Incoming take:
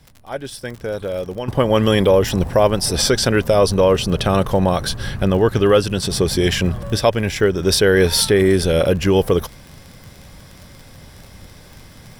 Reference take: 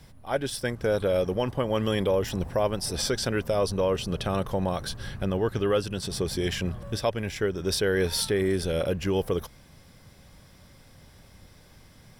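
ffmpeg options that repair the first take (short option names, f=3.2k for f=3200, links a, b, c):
-af "adeclick=t=4,asetnsamples=n=441:p=0,asendcmd='1.48 volume volume -11dB',volume=0dB"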